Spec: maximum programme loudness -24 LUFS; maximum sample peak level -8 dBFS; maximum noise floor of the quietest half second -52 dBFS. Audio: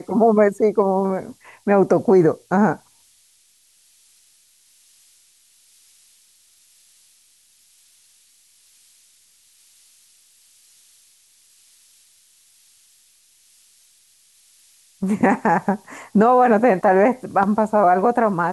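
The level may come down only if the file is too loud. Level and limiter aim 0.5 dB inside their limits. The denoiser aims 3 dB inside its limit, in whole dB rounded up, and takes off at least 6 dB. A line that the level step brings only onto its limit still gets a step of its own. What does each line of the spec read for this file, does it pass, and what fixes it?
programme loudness -17.5 LUFS: fail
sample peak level -5.5 dBFS: fail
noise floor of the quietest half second -58 dBFS: pass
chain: trim -7 dB

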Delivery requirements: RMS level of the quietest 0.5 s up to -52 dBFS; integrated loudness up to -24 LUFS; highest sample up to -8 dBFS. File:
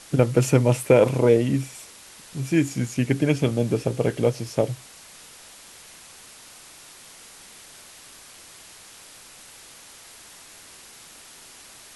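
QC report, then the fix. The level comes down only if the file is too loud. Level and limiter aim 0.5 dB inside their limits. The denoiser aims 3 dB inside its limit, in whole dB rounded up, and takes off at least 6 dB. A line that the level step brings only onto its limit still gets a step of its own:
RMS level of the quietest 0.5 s -47 dBFS: fail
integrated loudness -22.0 LUFS: fail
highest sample -4.0 dBFS: fail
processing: noise reduction 6 dB, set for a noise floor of -47 dBFS; trim -2.5 dB; peak limiter -8.5 dBFS

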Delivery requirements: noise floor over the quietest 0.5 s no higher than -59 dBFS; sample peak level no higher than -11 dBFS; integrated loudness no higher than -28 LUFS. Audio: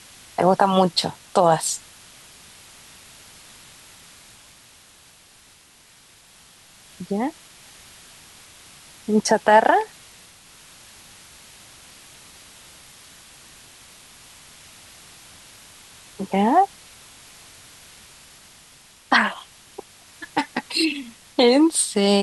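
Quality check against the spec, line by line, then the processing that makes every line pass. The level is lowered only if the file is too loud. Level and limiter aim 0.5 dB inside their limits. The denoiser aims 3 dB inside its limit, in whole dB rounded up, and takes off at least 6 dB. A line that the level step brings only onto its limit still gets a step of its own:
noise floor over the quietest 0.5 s -52 dBFS: fail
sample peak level -4.0 dBFS: fail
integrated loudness -20.0 LUFS: fail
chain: trim -8.5 dB

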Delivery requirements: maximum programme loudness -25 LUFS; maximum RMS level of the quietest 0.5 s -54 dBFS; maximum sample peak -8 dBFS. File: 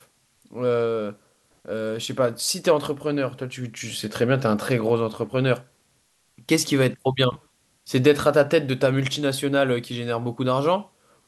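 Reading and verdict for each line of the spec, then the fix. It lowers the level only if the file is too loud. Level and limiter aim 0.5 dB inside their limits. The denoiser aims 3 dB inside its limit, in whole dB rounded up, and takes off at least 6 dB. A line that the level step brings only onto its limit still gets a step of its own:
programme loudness -23.0 LUFS: fail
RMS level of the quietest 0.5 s -65 dBFS: pass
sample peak -5.0 dBFS: fail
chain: trim -2.5 dB; peak limiter -8.5 dBFS

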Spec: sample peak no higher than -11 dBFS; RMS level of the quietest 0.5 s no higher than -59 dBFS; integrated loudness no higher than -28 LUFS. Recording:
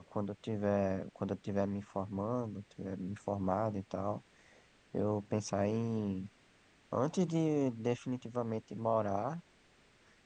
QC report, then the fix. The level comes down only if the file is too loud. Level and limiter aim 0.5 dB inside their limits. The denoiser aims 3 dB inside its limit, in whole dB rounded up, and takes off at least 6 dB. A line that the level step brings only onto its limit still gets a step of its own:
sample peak -17.0 dBFS: pass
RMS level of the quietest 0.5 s -66 dBFS: pass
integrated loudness -36.5 LUFS: pass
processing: none needed

